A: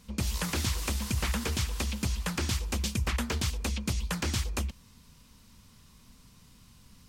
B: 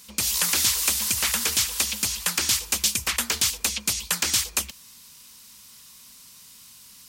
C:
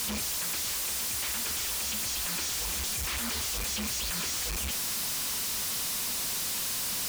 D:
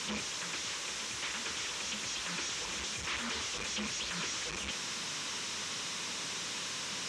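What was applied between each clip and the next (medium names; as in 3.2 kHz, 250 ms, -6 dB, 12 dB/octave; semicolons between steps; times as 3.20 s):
tilt EQ +4 dB/octave; trim +3.5 dB
one-bit comparator; trim -5 dB
cabinet simulation 140–6200 Hz, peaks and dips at 230 Hz -4 dB, 720 Hz -7 dB, 4.6 kHz -7 dB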